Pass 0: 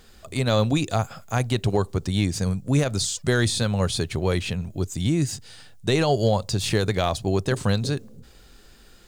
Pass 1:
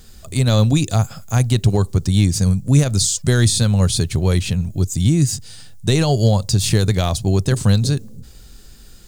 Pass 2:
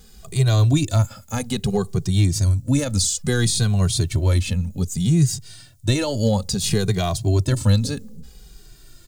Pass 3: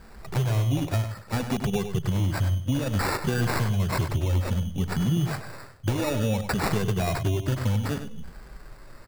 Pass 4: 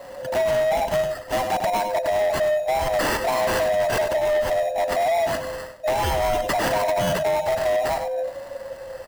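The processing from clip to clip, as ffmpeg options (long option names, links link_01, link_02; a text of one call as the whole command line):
ffmpeg -i in.wav -af "bass=frequency=250:gain=10,treble=frequency=4000:gain=10" out.wav
ffmpeg -i in.wav -filter_complex "[0:a]asplit=2[link_01][link_02];[link_02]adelay=2,afreqshift=-0.61[link_03];[link_01][link_03]amix=inputs=2:normalize=1" out.wav
ffmpeg -i in.wav -filter_complex "[0:a]acompressor=threshold=-22dB:ratio=6,acrusher=samples=14:mix=1:aa=0.000001,asplit=2[link_01][link_02];[link_02]adelay=99.13,volume=-9dB,highshelf=frequency=4000:gain=-2.23[link_03];[link_01][link_03]amix=inputs=2:normalize=0" out.wav
ffmpeg -i in.wav -af "afftfilt=real='real(if(lt(b,1008),b+24*(1-2*mod(floor(b/24),2)),b),0)':imag='imag(if(lt(b,1008),b+24*(1-2*mod(floor(b/24),2)),b),0)':win_size=2048:overlap=0.75,asoftclip=type=tanh:threshold=-25dB,volume=7.5dB" out.wav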